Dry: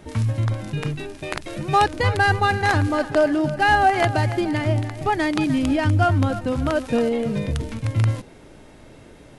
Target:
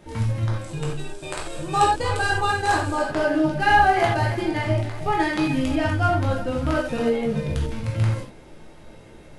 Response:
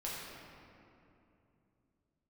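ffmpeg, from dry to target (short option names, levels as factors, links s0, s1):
-filter_complex "[0:a]asettb=1/sr,asplit=3[s0][s1][s2];[s0]atrim=end=0.614[s3];[s1]atrim=start=0.61:end=3.04,asetpts=PTS-STARTPTS,afade=t=in:d=0.004:c=qsin,afade=t=out:st=2.426:d=0.004:c=qsin,equalizer=f=100:t=o:w=0.33:g=-6,equalizer=f=200:t=o:w=0.33:g=-11,equalizer=f=2000:t=o:w=0.33:g=-8,equalizer=f=8000:t=o:w=0.33:g=12[s4];[s2]atrim=start=3.036[s5];[s3][s4]acrossfade=d=0.004:c1=hsin:c2=qsin[s6];[s6][s5]acrossfade=d=0.004:c1=qsin:c2=hsin[s7];[1:a]atrim=start_sample=2205,atrim=end_sample=4410[s8];[s7][s8]afir=irnorm=-1:irlink=0"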